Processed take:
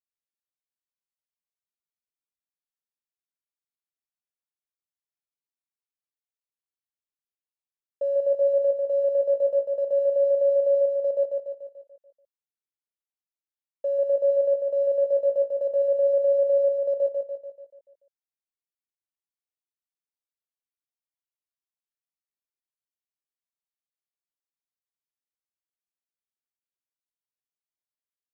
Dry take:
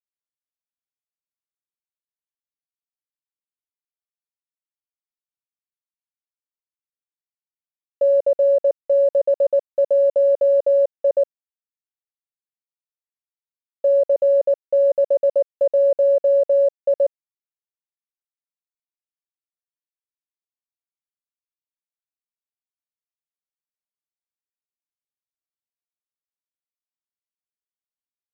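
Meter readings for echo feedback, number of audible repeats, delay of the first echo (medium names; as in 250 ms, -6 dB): 52%, 6, 145 ms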